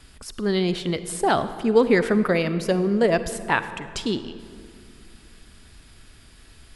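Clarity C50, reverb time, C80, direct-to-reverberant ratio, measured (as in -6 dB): 12.5 dB, 2.3 s, 13.0 dB, 12.0 dB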